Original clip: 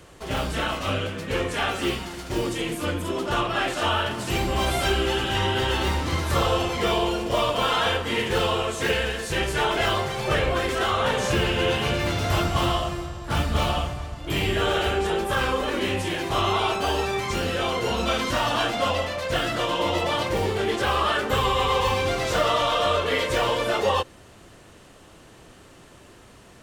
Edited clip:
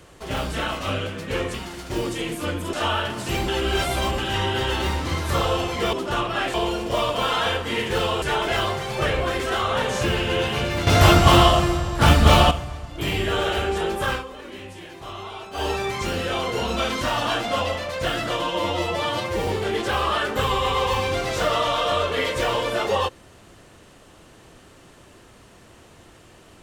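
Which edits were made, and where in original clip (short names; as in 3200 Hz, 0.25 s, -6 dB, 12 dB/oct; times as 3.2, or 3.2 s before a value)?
1.54–1.94 cut
3.13–3.74 move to 6.94
4.49–5.19 reverse
8.62–9.51 cut
12.16–13.8 gain +9.5 dB
15.4–16.94 dip -12.5 dB, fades 0.13 s
19.71–20.41 stretch 1.5×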